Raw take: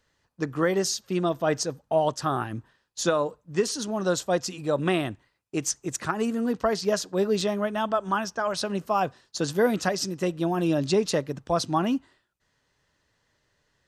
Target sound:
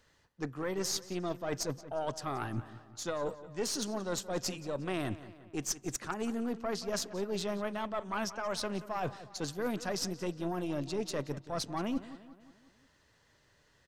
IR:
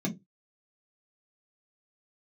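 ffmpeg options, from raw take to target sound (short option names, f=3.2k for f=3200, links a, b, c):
-filter_complex "[0:a]areverse,acompressor=threshold=-35dB:ratio=12,areverse,aeval=exprs='0.075*(cos(1*acos(clip(val(0)/0.075,-1,1)))-cos(1*PI/2))+0.00944*(cos(4*acos(clip(val(0)/0.075,-1,1)))-cos(4*PI/2))':c=same,asplit=2[a][b];[b]adelay=178,lowpass=f=4.2k:p=1,volume=-15dB,asplit=2[c][d];[d]adelay=178,lowpass=f=4.2k:p=1,volume=0.54,asplit=2[e][f];[f]adelay=178,lowpass=f=4.2k:p=1,volume=0.54,asplit=2[g][h];[h]adelay=178,lowpass=f=4.2k:p=1,volume=0.54,asplit=2[i][j];[j]adelay=178,lowpass=f=4.2k:p=1,volume=0.54[k];[a][c][e][g][i][k]amix=inputs=6:normalize=0,volume=3dB"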